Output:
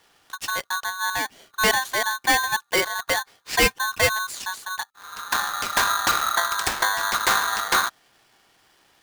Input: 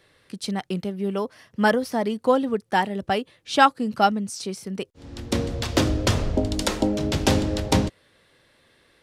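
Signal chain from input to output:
gain into a clipping stage and back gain 13 dB
ring modulator with a square carrier 1,300 Hz

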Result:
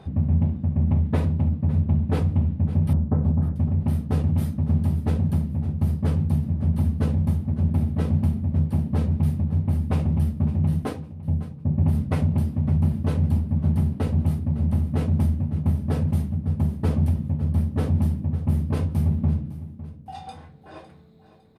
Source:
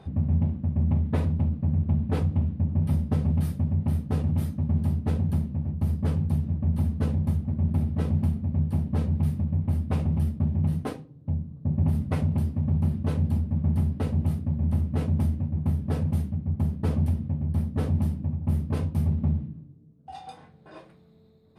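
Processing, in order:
0:02.93–0:03.56: low-pass filter 1,400 Hz 24 dB per octave
repeating echo 556 ms, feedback 35%, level −15.5 dB
level +3 dB

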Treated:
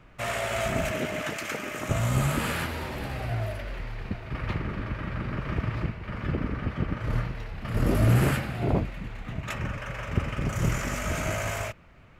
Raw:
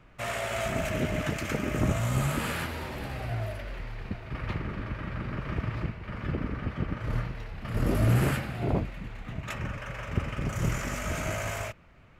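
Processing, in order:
0:00.90–0:01.89: high-pass filter 280 Hz → 1,100 Hz 6 dB per octave
level +2.5 dB

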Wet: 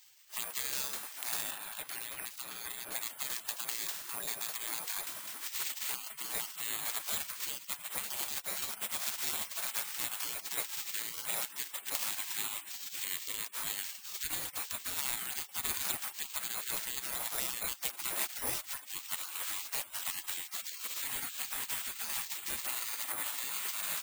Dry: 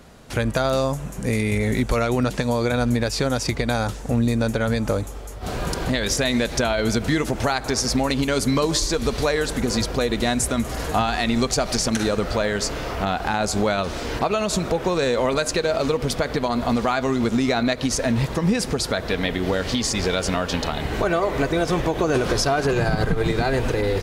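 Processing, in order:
speech leveller within 4 dB 0.5 s
bad sample-rate conversion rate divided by 4×, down none, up zero stuff
0:01.51–0:02.92: bass and treble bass −4 dB, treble −11 dB
gate on every frequency bin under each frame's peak −25 dB weak
level −4 dB

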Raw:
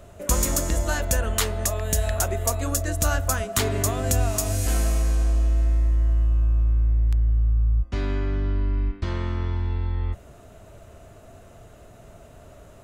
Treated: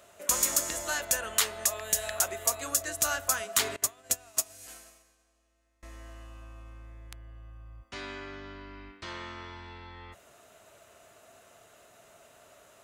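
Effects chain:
high-pass filter 1,400 Hz 6 dB per octave
0:03.76–0:05.83: expander for the loud parts 2.5 to 1, over −42 dBFS

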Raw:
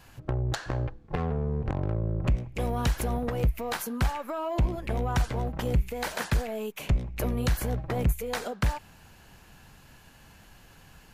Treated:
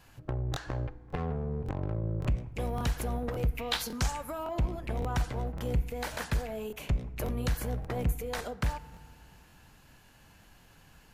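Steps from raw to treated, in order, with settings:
0:03.57–0:04.43: parametric band 2,500 Hz → 14,000 Hz +15 dB 0.98 octaves
feedback delay network reverb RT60 1.9 s, low-frequency decay 1.25×, high-frequency decay 0.35×, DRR 16.5 dB
regular buffer underruns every 0.56 s, samples 1,024, repeat, from 0:00.52
level −4.5 dB

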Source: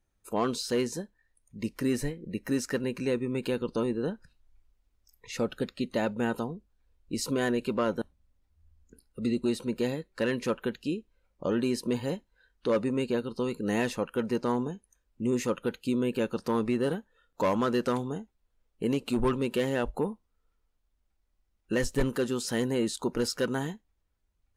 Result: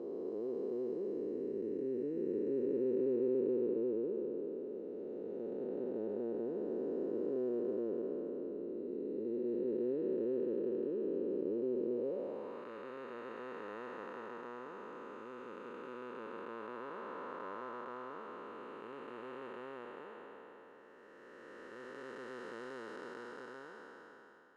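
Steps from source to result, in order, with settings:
spectrum smeared in time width 1,410 ms
parametric band 410 Hz +5.5 dB 0.88 octaves
band-pass filter sweep 390 Hz → 1,300 Hz, 0:11.91–0:12.69
level +1 dB

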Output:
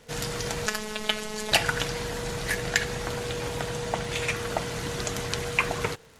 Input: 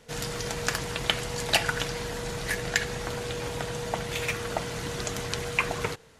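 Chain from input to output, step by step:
0:00.66–0:01.52: phases set to zero 214 Hz
0:03.78–0:04.36: low-pass filter 11,000 Hz 24 dB per octave
surface crackle 100 per second −43 dBFS
level +1.5 dB

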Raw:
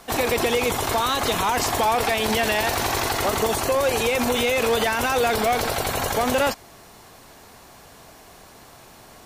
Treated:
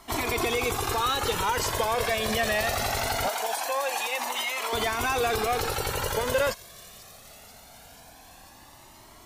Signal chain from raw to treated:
0:03.28–0:04.73: Chebyshev high-pass filter 710 Hz, order 2
delay with a high-pass on its return 488 ms, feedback 73%, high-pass 4,200 Hz, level −14.5 dB
flanger whose copies keep moving one way rising 0.22 Hz

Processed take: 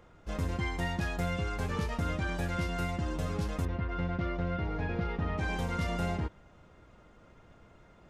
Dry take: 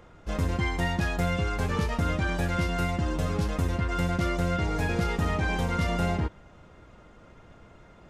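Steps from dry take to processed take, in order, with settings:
0:03.65–0:05.38: high-frequency loss of the air 280 metres
level −5.5 dB

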